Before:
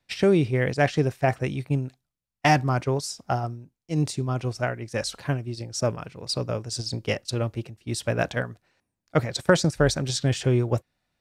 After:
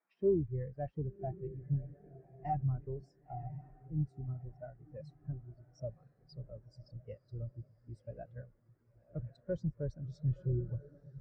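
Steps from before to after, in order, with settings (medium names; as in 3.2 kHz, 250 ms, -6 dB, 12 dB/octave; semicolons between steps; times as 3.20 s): octave divider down 2 oct, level -6 dB; echo that smears into a reverb 1035 ms, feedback 55%, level -8 dB; band noise 160–2100 Hz -40 dBFS; saturation -18 dBFS, distortion -12 dB; spectral contrast expander 2.5:1; trim -3 dB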